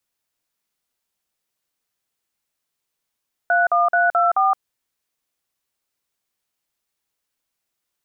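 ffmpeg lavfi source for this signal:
ffmpeg -f lavfi -i "aevalsrc='0.15*clip(min(mod(t,0.216),0.169-mod(t,0.216))/0.002,0,1)*(eq(floor(t/0.216),0)*(sin(2*PI*697*mod(t,0.216))+sin(2*PI*1477*mod(t,0.216)))+eq(floor(t/0.216),1)*(sin(2*PI*697*mod(t,0.216))+sin(2*PI*1209*mod(t,0.216)))+eq(floor(t/0.216),2)*(sin(2*PI*697*mod(t,0.216))+sin(2*PI*1477*mod(t,0.216)))+eq(floor(t/0.216),3)*(sin(2*PI*697*mod(t,0.216))+sin(2*PI*1336*mod(t,0.216)))+eq(floor(t/0.216),4)*(sin(2*PI*770*mod(t,0.216))+sin(2*PI*1209*mod(t,0.216))))':duration=1.08:sample_rate=44100" out.wav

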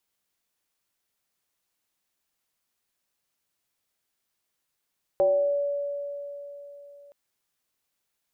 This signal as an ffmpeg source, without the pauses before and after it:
ffmpeg -f lavfi -i "aevalsrc='0.141*pow(10,-3*t/3.68)*sin(2*PI*571*t+0.53*pow(10,-3*t/0.88)*sin(2*PI*0.36*571*t))':duration=1.92:sample_rate=44100" out.wav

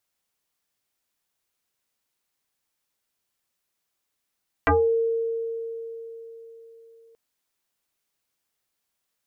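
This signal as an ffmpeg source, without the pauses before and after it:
ffmpeg -f lavfi -i "aevalsrc='0.178*pow(10,-3*t/4.04)*sin(2*PI*457*t+5.2*pow(10,-3*t/0.27)*sin(2*PI*0.82*457*t))':duration=2.48:sample_rate=44100" out.wav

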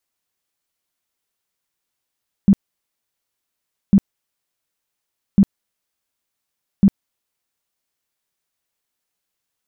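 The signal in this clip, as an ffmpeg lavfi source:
ffmpeg -f lavfi -i "aevalsrc='0.473*sin(2*PI*197*mod(t,1.45))*lt(mod(t,1.45),10/197)':duration=5.8:sample_rate=44100" out.wav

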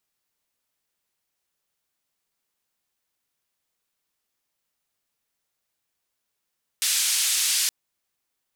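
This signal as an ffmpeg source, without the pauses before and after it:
ffmpeg -f lavfi -i "anoisesrc=color=white:duration=0.87:sample_rate=44100:seed=1,highpass=frequency=2800,lowpass=frequency=10000,volume=-13.3dB" out.wav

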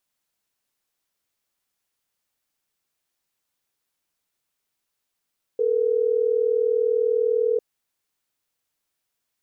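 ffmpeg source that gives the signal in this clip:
ffmpeg -f lavfi -i "aevalsrc='0.0891*(sin(2*PI*440*t)+sin(2*PI*480*t))*clip(min(mod(t,6),2-mod(t,6))/0.005,0,1)':duration=3.12:sample_rate=44100" out.wav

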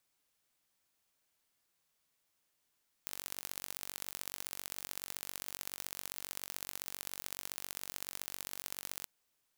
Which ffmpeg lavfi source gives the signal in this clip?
ffmpeg -f lavfi -i "aevalsrc='0.251*eq(mod(n,934),0)*(0.5+0.5*eq(mod(n,2802),0))':duration=5.98:sample_rate=44100" out.wav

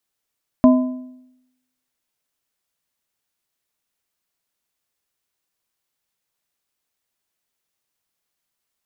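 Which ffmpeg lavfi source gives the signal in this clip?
ffmpeg -f lavfi -i "aevalsrc='0.501*pow(10,-3*t/0.86)*sin(2*PI*254*t)+0.224*pow(10,-3*t/0.653)*sin(2*PI*635*t)+0.1*pow(10,-3*t/0.567)*sin(2*PI*1016*t)':duration=1.55:sample_rate=44100" out.wav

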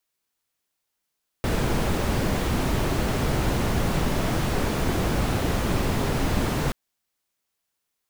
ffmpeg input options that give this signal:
ffmpeg -f lavfi -i "anoisesrc=color=brown:amplitude=0.331:duration=5.28:sample_rate=44100:seed=1" out.wav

